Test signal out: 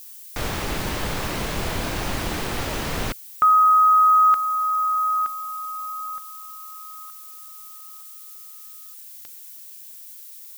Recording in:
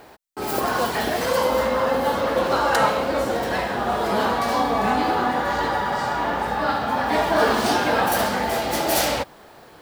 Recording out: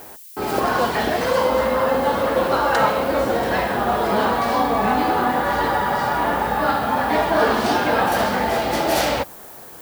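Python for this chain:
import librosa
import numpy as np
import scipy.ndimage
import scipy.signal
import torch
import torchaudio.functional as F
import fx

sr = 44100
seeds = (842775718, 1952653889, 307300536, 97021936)

p1 = fx.high_shelf(x, sr, hz=6200.0, db=-10.5)
p2 = fx.rider(p1, sr, range_db=3, speed_s=0.5)
p3 = p1 + (p2 * 10.0 ** (0.0 / 20.0))
p4 = fx.dmg_noise_colour(p3, sr, seeds[0], colour='violet', level_db=-38.0)
y = p4 * 10.0 ** (-3.5 / 20.0)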